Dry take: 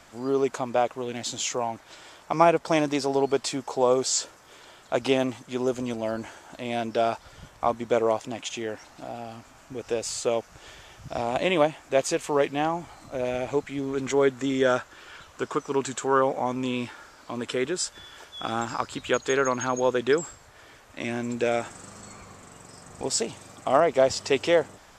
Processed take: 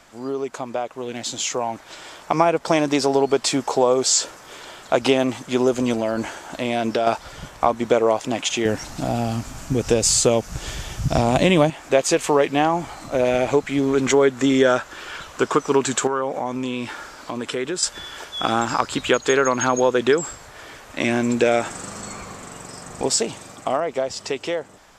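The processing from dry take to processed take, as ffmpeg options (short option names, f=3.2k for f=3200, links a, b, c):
-filter_complex "[0:a]asettb=1/sr,asplit=3[a][b][c];[a]atrim=end=5.954[d];[b]atrim=start=5.95:end=7.07,asetpts=PTS-STARTPTS,afade=t=in:d=0.004:c=qsin,afade=t=out:st=1.116:d=0.004:c=qsin,acompressor=threshold=-27dB:ratio=6:attack=3.2:release=140:knee=1:detection=peak[e];[c]atrim=start=7.066[f];[d][e]acrossfade=d=0.004:c1=hsin:c2=qsin[g];[g][f]acrossfade=d=0.004:c1=qsin:c2=hsin,asettb=1/sr,asplit=3[h][i][j];[h]atrim=end=8.654[k];[i]atrim=start=8.65:end=11.7,asetpts=PTS-STARTPTS,afade=t=in:d=0.004:c=qsin,afade=t=out:st=3.046:d=0.004:c=qsin,bass=f=250:g=14,treble=f=4k:g=7[l];[j]atrim=start=11.696[m];[k][l]acrossfade=d=0.004:c1=hsin:c2=qsin[n];[n][m]acrossfade=d=0.004:c1=qsin:c2=hsin,asettb=1/sr,asplit=3[o][p][q];[o]atrim=end=16.074[r];[p]atrim=start=16.07:end=17.83,asetpts=PTS-STARTPTS,afade=t=in:d=0.004:c=qsin,afade=t=out:st=1.756:d=0.004:c=qsin,acompressor=threshold=-36dB:ratio=2.5:attack=3.2:release=140:knee=1:detection=peak[s];[q]atrim=start=17.826[t];[r][s]acrossfade=d=0.004:c1=hsin:c2=qsin[u];[u][t]acrossfade=d=0.004:c1=qsin:c2=hsin,acompressor=threshold=-25dB:ratio=3,equalizer=f=90:t=o:w=0.77:g=-5,dynaudnorm=f=170:g=21:m=10dB,volume=1.5dB"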